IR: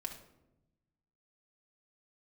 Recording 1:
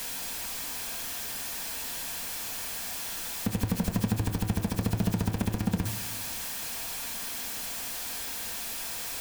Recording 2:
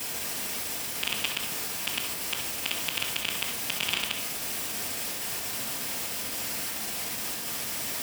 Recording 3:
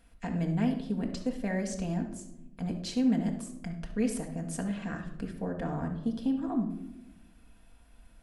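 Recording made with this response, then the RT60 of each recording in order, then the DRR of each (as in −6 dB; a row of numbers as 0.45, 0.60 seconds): 3; 0.95, 0.90, 0.90 seconds; 7.5, −7.5, 1.5 decibels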